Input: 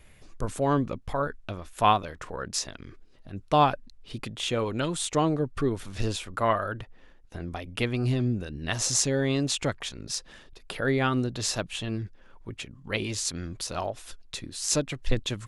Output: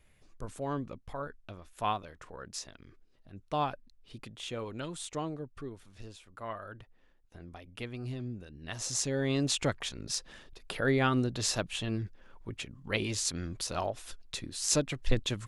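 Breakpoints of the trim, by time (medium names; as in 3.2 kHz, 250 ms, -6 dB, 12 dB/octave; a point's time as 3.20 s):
5.06 s -10.5 dB
6.14 s -19.5 dB
6.77 s -12.5 dB
8.55 s -12.5 dB
9.49 s -2 dB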